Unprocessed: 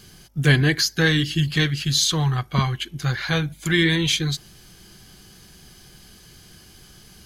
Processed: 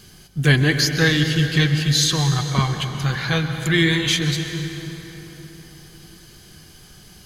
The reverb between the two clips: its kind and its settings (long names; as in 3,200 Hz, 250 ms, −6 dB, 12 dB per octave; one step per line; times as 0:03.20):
dense smooth reverb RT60 4.2 s, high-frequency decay 0.6×, pre-delay 115 ms, DRR 6 dB
level +1 dB